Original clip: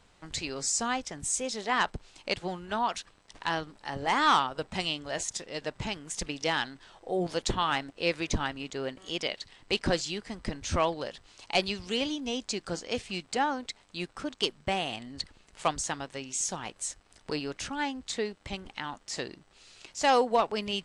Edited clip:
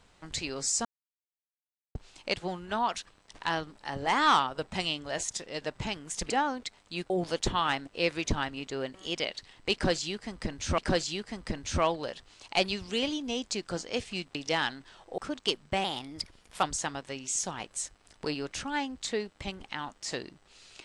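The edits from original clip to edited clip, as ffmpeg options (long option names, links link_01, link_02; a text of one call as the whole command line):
ffmpeg -i in.wav -filter_complex "[0:a]asplit=10[link_01][link_02][link_03][link_04][link_05][link_06][link_07][link_08][link_09][link_10];[link_01]atrim=end=0.85,asetpts=PTS-STARTPTS,afade=type=out:start_time=0.846:duration=0.004:curve=hsin[link_11];[link_02]atrim=start=0.85:end=1.95,asetpts=PTS-STARTPTS,volume=0[link_12];[link_03]atrim=start=1.95:end=6.302,asetpts=PTS-STARTPTS,afade=type=in:duration=0.004:curve=hsin[link_13];[link_04]atrim=start=13.328:end=14.132[link_14];[link_05]atrim=start=7.128:end=10.812[link_15];[link_06]atrim=start=9.758:end=13.332[link_16];[link_07]atrim=start=6.298:end=7.132[link_17];[link_08]atrim=start=14.128:end=14.794[link_18];[link_09]atrim=start=14.79:end=15.69,asetpts=PTS-STARTPTS,asetrate=49833,aresample=44100[link_19];[link_10]atrim=start=15.686[link_20];[link_11][link_12][link_13]concat=n=3:v=0:a=1[link_21];[link_21][link_14]acrossfade=duration=0.004:curve1=hsin:curve2=hsin[link_22];[link_22][link_15]acrossfade=duration=0.004:curve1=hsin:curve2=hsin[link_23];[link_23][link_16]acrossfade=duration=0.004:curve1=hsin:curve2=hsin[link_24];[link_24][link_17]acrossfade=duration=0.004:curve1=hsin:curve2=hsin[link_25];[link_25][link_18]acrossfade=duration=0.004:curve1=hsin:curve2=hsin[link_26];[link_26][link_19]acrossfade=duration=0.004:curve1=hsin:curve2=hsin[link_27];[link_27][link_20]acrossfade=duration=0.004:curve1=hsin:curve2=hsin" out.wav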